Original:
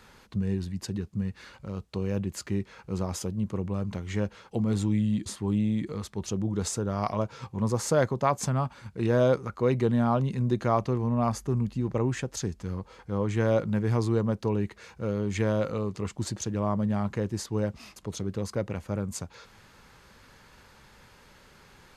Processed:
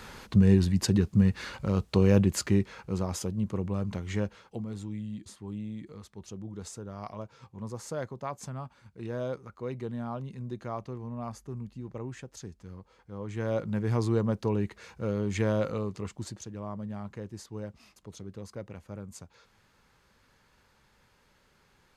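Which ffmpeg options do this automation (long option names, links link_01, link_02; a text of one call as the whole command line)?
ffmpeg -i in.wav -af "volume=19dB,afade=type=out:start_time=2.11:duration=0.88:silence=0.354813,afade=type=out:start_time=4.12:duration=0.57:silence=0.281838,afade=type=in:start_time=13.17:duration=0.9:silence=0.298538,afade=type=out:start_time=15.66:duration=0.81:silence=0.334965" out.wav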